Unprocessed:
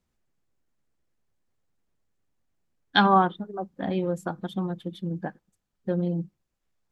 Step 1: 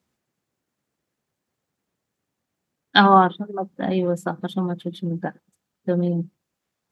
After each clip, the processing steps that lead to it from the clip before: HPF 120 Hz 12 dB/oct; gain +5.5 dB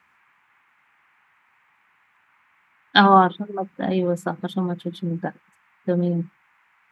band noise 840–2400 Hz -62 dBFS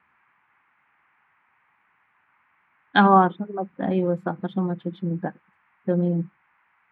air absorption 440 m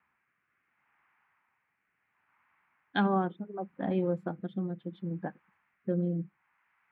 rotary speaker horn 0.7 Hz; gain -6.5 dB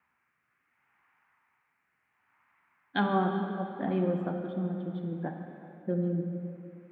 plate-style reverb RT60 3 s, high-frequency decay 0.75×, DRR 3 dB

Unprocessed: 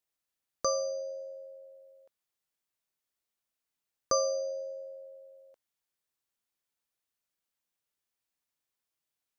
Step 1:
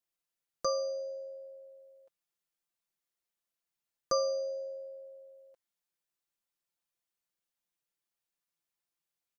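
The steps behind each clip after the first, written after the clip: comb 5.8 ms; gain -4.5 dB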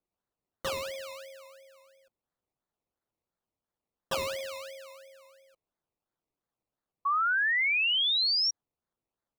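decimation with a swept rate 22×, swing 60% 2.9 Hz; dynamic EQ 3700 Hz, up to +6 dB, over -51 dBFS, Q 0.89; painted sound rise, 7.05–8.51, 1100–5700 Hz -23 dBFS; gain -3.5 dB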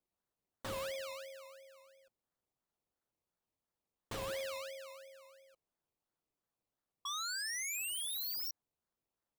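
wavefolder -33.5 dBFS; gain -2.5 dB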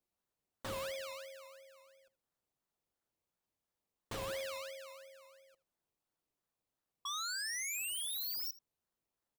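echo 79 ms -19.5 dB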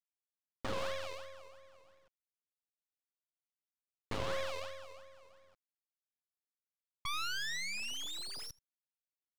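G.711 law mismatch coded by A; air absorption 150 m; half-wave rectifier; gain +13 dB

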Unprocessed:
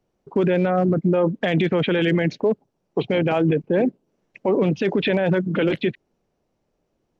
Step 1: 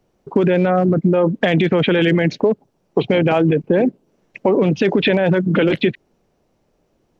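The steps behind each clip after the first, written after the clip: compressor, threshold -20 dBFS, peak gain reduction 5.5 dB; gain +8.5 dB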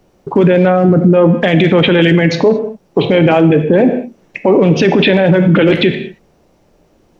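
non-linear reverb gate 0.25 s falling, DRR 8 dB; maximiser +12 dB; gain -1 dB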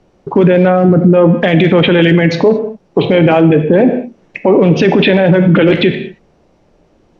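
air absorption 72 m; gain +1 dB

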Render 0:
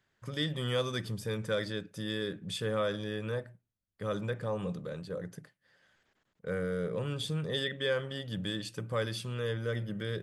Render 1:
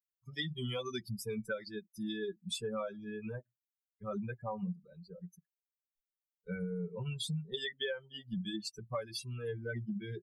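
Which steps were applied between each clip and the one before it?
per-bin expansion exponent 3; comb 5.2 ms, depth 71%; compressor 8:1, threshold -42 dBFS, peak gain reduction 15.5 dB; gain +7.5 dB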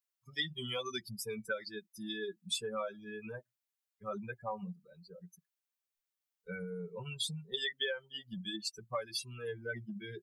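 low shelf 370 Hz -11.5 dB; gain +3.5 dB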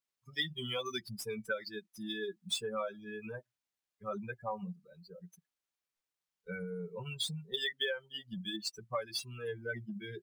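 median filter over 3 samples; gain +1 dB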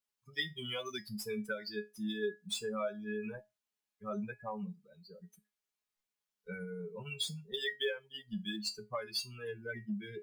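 resonator 210 Hz, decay 0.21 s, harmonics all, mix 80%; gain +8 dB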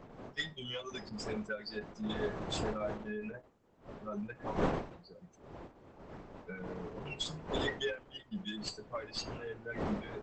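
tracing distortion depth 0.039 ms; wind noise 610 Hz -42 dBFS; gain -1 dB; Opus 10 kbps 48000 Hz

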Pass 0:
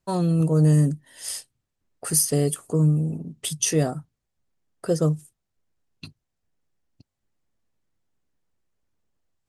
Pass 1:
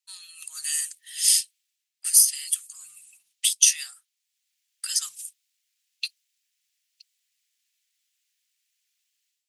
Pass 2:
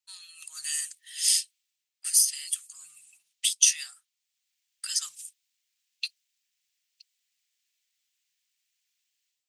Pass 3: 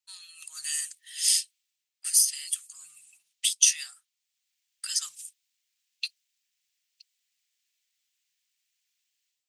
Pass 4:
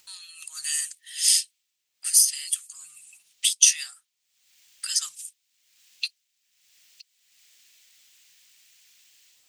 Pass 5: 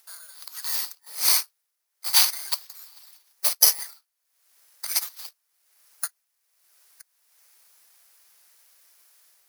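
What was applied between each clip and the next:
inverse Chebyshev high-pass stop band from 540 Hz, stop band 70 dB; AGC gain up to 15.5 dB; gain -1 dB
bell 11000 Hz -7.5 dB 0.36 oct; gain -2 dB
nothing audible
upward compressor, threshold -46 dBFS; gain +3.5 dB
FFT order left unsorted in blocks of 16 samples; steep high-pass 350 Hz 48 dB/oct

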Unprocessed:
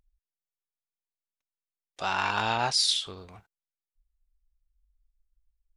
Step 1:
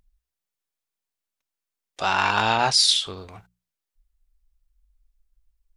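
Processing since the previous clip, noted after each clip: notches 60/120/180 Hz; gain +6.5 dB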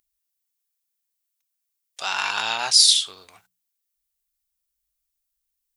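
tilt +4.5 dB/oct; gain -6.5 dB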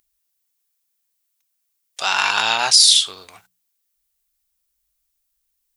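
limiter -8 dBFS, peak gain reduction 6 dB; gain +6.5 dB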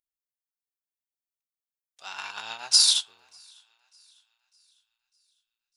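thinning echo 0.601 s, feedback 49%, high-pass 1100 Hz, level -15 dB; upward expander 2.5:1, over -23 dBFS; gain -4.5 dB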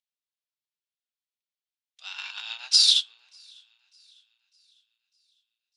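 band-pass 3400 Hz, Q 1.6; gain +4.5 dB

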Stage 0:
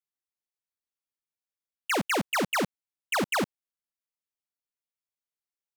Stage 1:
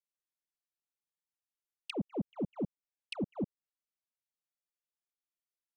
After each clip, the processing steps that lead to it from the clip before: envelope flanger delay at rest 5.8 ms, full sweep at -31 dBFS; treble ducked by the level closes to 390 Hz, closed at -30 dBFS; gain -3.5 dB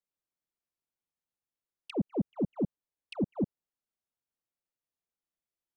tilt shelf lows +5.5 dB, about 1200 Hz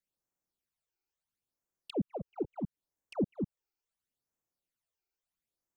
compressor 3:1, threshold -33 dBFS, peak gain reduction 6.5 dB; phaser stages 12, 0.74 Hz, lowest notch 180–4100 Hz; gain +3.5 dB

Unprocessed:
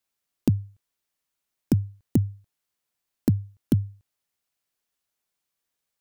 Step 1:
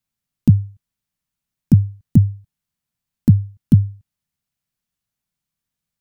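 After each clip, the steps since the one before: resonant low shelf 260 Hz +11.5 dB, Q 1.5; gain -2 dB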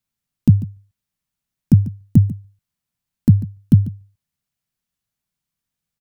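echo 0.144 s -16.5 dB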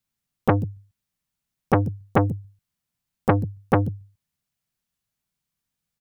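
core saturation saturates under 850 Hz

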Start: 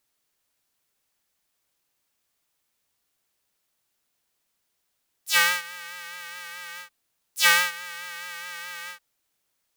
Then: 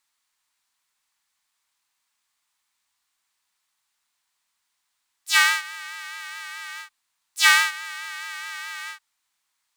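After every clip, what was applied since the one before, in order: graphic EQ 125/500/1000/2000/4000/8000 Hz -5/-8/+12/+7/+7/+8 dB; gain -7 dB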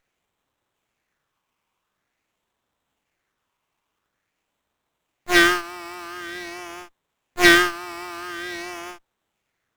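phaser stages 6, 0.47 Hz, lowest notch 440–2000 Hz; running maximum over 9 samples; gain +5.5 dB

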